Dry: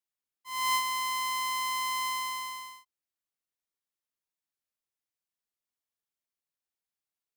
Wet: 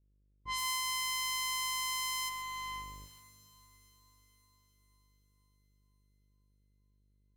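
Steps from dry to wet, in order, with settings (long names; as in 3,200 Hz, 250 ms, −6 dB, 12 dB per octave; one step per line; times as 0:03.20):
compressor on every frequency bin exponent 0.6
dense smooth reverb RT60 4 s, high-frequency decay 0.8×, pre-delay 115 ms, DRR 15.5 dB
hum with harmonics 50 Hz, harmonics 12, −46 dBFS −8 dB per octave
noise gate with hold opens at −37 dBFS
low-pass that shuts in the quiet parts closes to 370 Hz, open at −27.5 dBFS
tilt shelving filter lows −6 dB, about 1,200 Hz
downward compressor 6 to 1, threshold −34 dBFS, peak gain reduction 14 dB
bass and treble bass +2 dB, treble +3 dB, from 0:02.28 treble −12 dB
feedback delay with all-pass diffusion 477 ms, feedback 58%, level −15 dB
feedback echo at a low word length 133 ms, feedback 35%, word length 9 bits, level −10 dB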